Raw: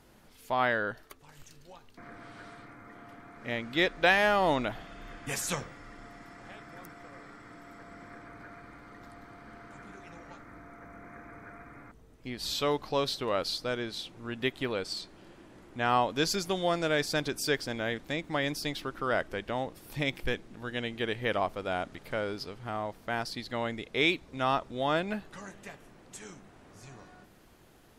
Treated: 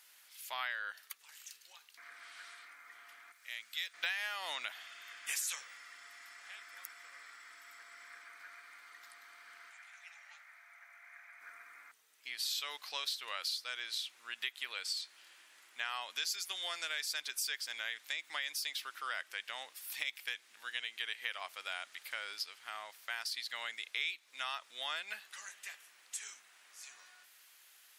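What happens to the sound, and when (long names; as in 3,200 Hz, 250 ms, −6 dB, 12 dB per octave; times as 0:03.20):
0:03.32–0:03.94: first-order pre-emphasis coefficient 0.8
0:09.70–0:11.41: Chebyshev high-pass with heavy ripple 560 Hz, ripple 6 dB
whole clip: Chebyshev high-pass filter 2,100 Hz, order 2; high-shelf EQ 7,200 Hz +8 dB; downward compressor 4 to 1, threshold −38 dBFS; level +2.5 dB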